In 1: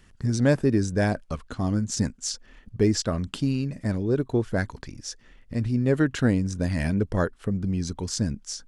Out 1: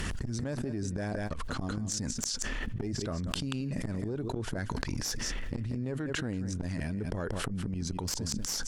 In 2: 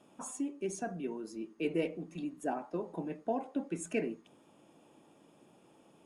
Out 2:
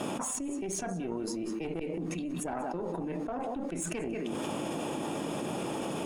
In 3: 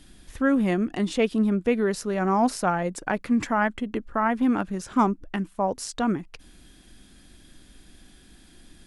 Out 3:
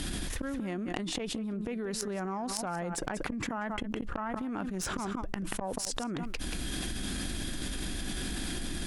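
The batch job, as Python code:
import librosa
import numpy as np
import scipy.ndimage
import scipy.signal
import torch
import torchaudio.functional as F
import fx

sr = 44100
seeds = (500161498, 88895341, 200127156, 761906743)

y = fx.gate_flip(x, sr, shuts_db=-20.0, range_db=-27)
y = y + 10.0 ** (-16.0 / 20.0) * np.pad(y, (int(184 * sr / 1000.0), 0))[:len(y)]
y = fx.tube_stage(y, sr, drive_db=27.0, bias=0.8)
y = fx.env_flatten(y, sr, amount_pct=100)
y = y * librosa.db_to_amplitude(-1.5)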